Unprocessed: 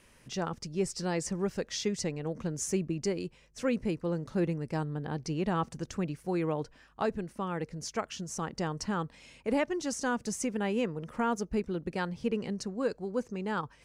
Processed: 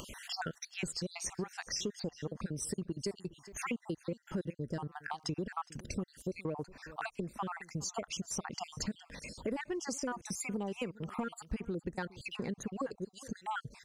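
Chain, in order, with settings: random spectral dropouts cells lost 55%; in parallel at -8.5 dB: overloaded stage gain 26.5 dB; on the sum: compressor 6:1, threshold -40 dBFS, peak gain reduction 15.5 dB; echo 0.413 s -21.5 dB; upward compressor, threshold -44 dBFS; gain +5 dB

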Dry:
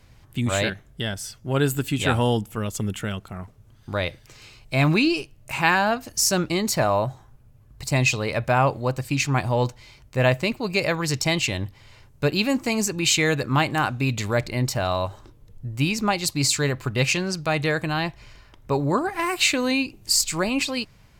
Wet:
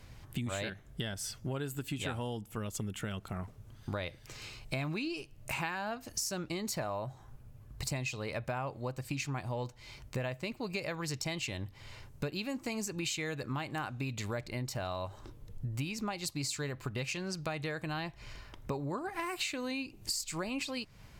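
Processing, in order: compressor 8:1, threshold -34 dBFS, peak gain reduction 19.5 dB

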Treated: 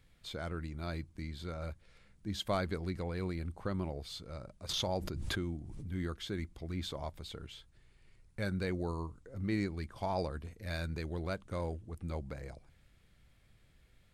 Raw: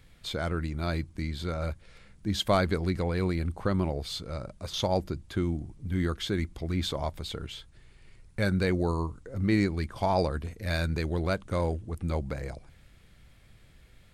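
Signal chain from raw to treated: 4.69–5.92 backwards sustainer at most 21 dB/s; gain -9 dB

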